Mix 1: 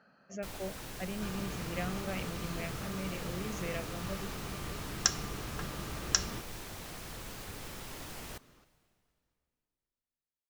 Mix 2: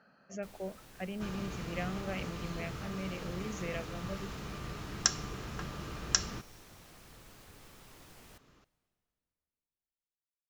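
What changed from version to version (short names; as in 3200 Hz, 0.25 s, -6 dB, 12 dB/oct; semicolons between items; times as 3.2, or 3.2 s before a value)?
first sound -11.5 dB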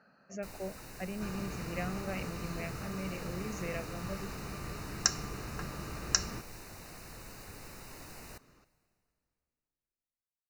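first sound +7.5 dB; master: add Butterworth band-stop 3300 Hz, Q 4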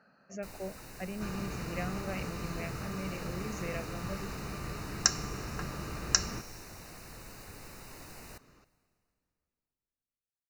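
second sound: send +11.0 dB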